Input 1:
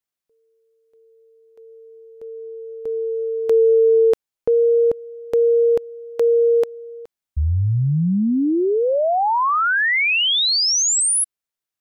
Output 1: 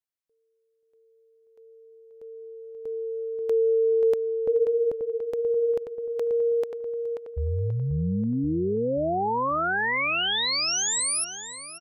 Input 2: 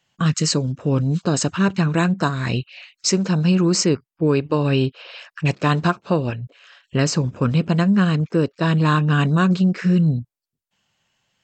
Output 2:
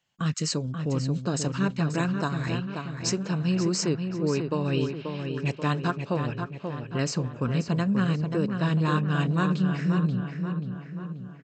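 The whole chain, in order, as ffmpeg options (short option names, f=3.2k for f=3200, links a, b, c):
-filter_complex "[0:a]asplit=2[a][b];[b]adelay=534,lowpass=f=3.2k:p=1,volume=-6dB,asplit=2[c][d];[d]adelay=534,lowpass=f=3.2k:p=1,volume=0.53,asplit=2[e][f];[f]adelay=534,lowpass=f=3.2k:p=1,volume=0.53,asplit=2[g][h];[h]adelay=534,lowpass=f=3.2k:p=1,volume=0.53,asplit=2[i][j];[j]adelay=534,lowpass=f=3.2k:p=1,volume=0.53,asplit=2[k][l];[l]adelay=534,lowpass=f=3.2k:p=1,volume=0.53,asplit=2[m][n];[n]adelay=534,lowpass=f=3.2k:p=1,volume=0.53[o];[a][c][e][g][i][k][m][o]amix=inputs=8:normalize=0,volume=-8.5dB"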